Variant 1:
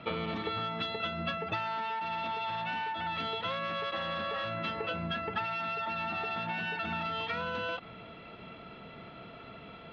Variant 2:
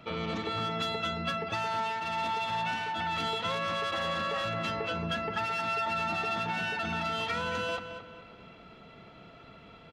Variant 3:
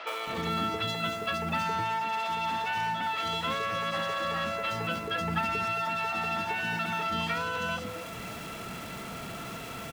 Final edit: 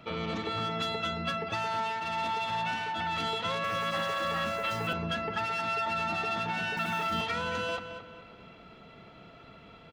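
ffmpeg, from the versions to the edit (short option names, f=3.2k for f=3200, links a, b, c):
-filter_complex "[2:a]asplit=2[a][b];[1:a]asplit=3[c][d][e];[c]atrim=end=3.642[f];[a]atrim=start=3.638:end=4.932[g];[d]atrim=start=4.928:end=6.772[h];[b]atrim=start=6.768:end=7.212[i];[e]atrim=start=7.208[j];[f][g]acrossfade=d=0.004:c1=hsin:c2=hsin[k];[k][h]acrossfade=d=0.004:c1=hsin:c2=hsin[l];[l][i]acrossfade=d=0.004:c1=hsin:c2=hsin[m];[m][j]acrossfade=d=0.004:c1=hsin:c2=hsin"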